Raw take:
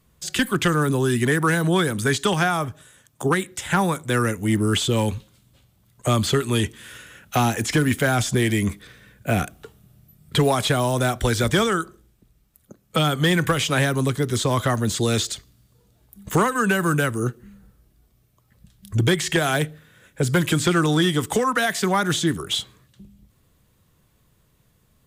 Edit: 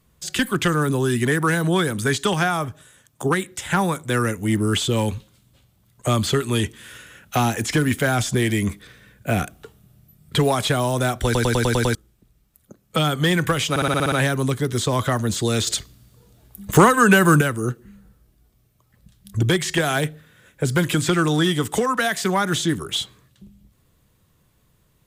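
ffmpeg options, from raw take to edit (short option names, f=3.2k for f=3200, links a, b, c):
-filter_complex "[0:a]asplit=17[a][b][c][d][e][f][g][h][i][j][k][l][m][n][o][p][q];[a]atrim=end=11.352[r];[b]atrim=start=11.248:end=11.352[s];[c]atrim=start=11.248:end=11.352[t];[d]atrim=start=11.248:end=11.352[u];[e]atrim=start=11.248:end=11.352[v];[f]atrim=start=11.248:end=11.352[w];[g]atrim=start=11.248:end=11.352[x];[h]atrim=start=11.948:end=13.762[y];[i]atrim=start=13.698:end=13.762[z];[j]atrim=start=13.698:end=13.762[aa];[k]atrim=start=13.698:end=13.762[ab];[l]atrim=start=13.698:end=13.762[ac];[m]atrim=start=13.698:end=13.762[ad];[n]atrim=start=13.698:end=13.762[ae];[o]atrim=start=13.698:end=15.252[af];[p]atrim=start=15.248:end=16.992,asetpts=PTS-STARTPTS,volume=6.5dB[ag];[q]atrim=start=16.988[ah];[r][s]acrossfade=d=0.004:c1=hsin:c2=hsin[ai];[ai][t]acrossfade=d=0.004:c1=hsin:c2=hsin[aj];[aj][u]acrossfade=d=0.004:c1=hsin:c2=hsin[ak];[ak][v]acrossfade=d=0.004:c1=hsin:c2=hsin[al];[al][w]acrossfade=d=0.004:c1=hsin:c2=hsin[am];[am][x]acrossfade=d=0.004:c1=hsin:c2=hsin[an];[an][y]acrossfade=d=0.004:c1=hsin:c2=hsin[ao];[ao][z]acrossfade=d=0.004:c1=hsin:c2=hsin[ap];[ap][aa]acrossfade=d=0.004:c1=hsin:c2=hsin[aq];[aq][ab]acrossfade=d=0.004:c1=hsin:c2=hsin[ar];[ar][ac]acrossfade=d=0.004:c1=hsin:c2=hsin[as];[as][ad]acrossfade=d=0.004:c1=hsin:c2=hsin[at];[at][ae]acrossfade=d=0.004:c1=hsin:c2=hsin[au];[au][af]acrossfade=d=0.004:c1=hsin:c2=hsin[av];[av][ag]acrossfade=d=0.004:c1=hsin:c2=hsin[aw];[aw][ah]acrossfade=d=0.004:c1=hsin:c2=hsin"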